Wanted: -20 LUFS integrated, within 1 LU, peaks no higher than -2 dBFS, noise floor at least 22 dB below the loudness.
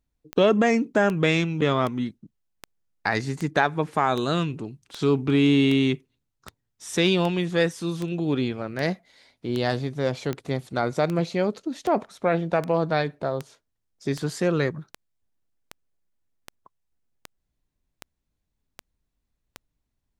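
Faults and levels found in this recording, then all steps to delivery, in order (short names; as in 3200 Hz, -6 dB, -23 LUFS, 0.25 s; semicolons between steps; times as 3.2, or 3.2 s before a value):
clicks 26; loudness -24.5 LUFS; peak -5.5 dBFS; loudness target -20.0 LUFS
-> de-click; gain +4.5 dB; limiter -2 dBFS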